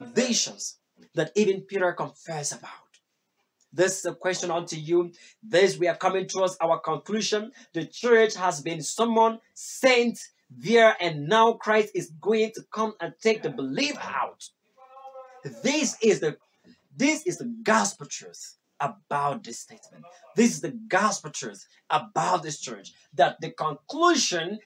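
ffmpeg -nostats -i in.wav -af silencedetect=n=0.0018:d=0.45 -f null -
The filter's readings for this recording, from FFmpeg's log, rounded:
silence_start: 2.97
silence_end: 3.61 | silence_duration: 0.64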